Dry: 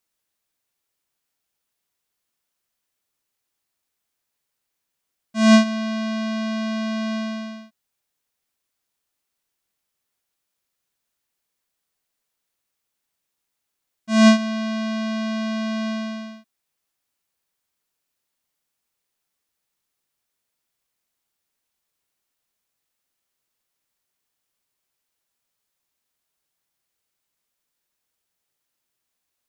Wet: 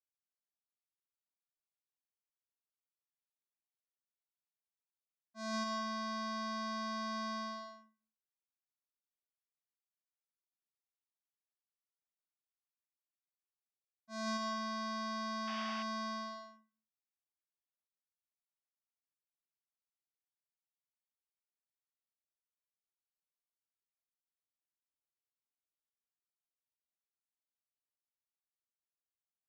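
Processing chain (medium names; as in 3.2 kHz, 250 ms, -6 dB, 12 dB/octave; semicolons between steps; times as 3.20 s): graphic EQ 500/2000/4000 Hz +8/-6/+6 dB; reverse; compression 6:1, threshold -27 dBFS, peak gain reduction 18 dB; reverse; band-pass 360–5300 Hz; static phaser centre 1.2 kHz, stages 4; power-law waveshaper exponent 1.4; on a send at -3 dB: reverberation RT60 0.45 s, pre-delay 105 ms; on the sum: painted sound noise, 15.47–15.83 s, 590–3500 Hz -48 dBFS; tape noise reduction on one side only decoder only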